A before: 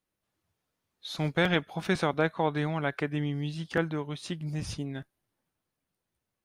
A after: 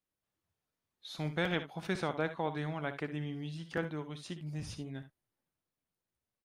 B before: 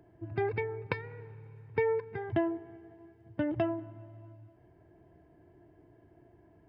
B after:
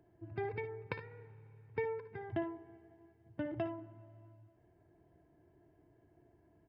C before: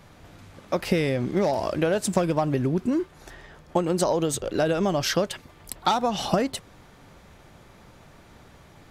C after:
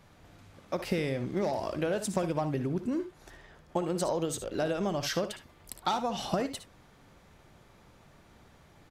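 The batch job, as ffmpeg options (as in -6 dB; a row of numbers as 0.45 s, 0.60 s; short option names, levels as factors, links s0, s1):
-af "aecho=1:1:59|73:0.224|0.188,volume=0.422"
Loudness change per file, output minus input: -7.5 LU, -8.0 LU, -7.0 LU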